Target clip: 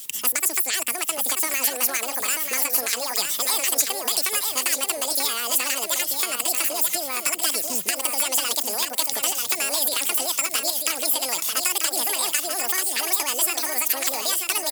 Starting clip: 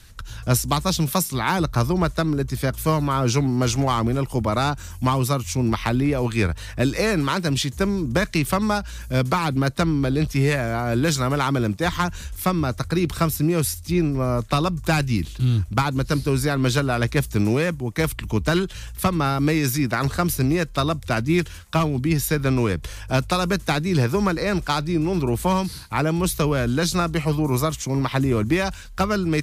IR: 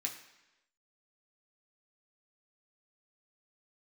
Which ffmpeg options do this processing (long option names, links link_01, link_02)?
-filter_complex "[0:a]highpass=260,acrossover=split=3400|7800[link_01][link_02][link_03];[link_01]acompressor=threshold=-32dB:ratio=4[link_04];[link_02]acompressor=threshold=-40dB:ratio=4[link_05];[link_03]acompressor=threshold=-49dB:ratio=4[link_06];[link_04][link_05][link_06]amix=inputs=3:normalize=0,asetrate=88200,aresample=44100,crystalizer=i=5.5:c=0,asplit=2[link_07][link_08];[link_08]aecho=0:1:938|1876|2814:0.531|0.133|0.0332[link_09];[link_07][link_09]amix=inputs=2:normalize=0,volume=-1dB"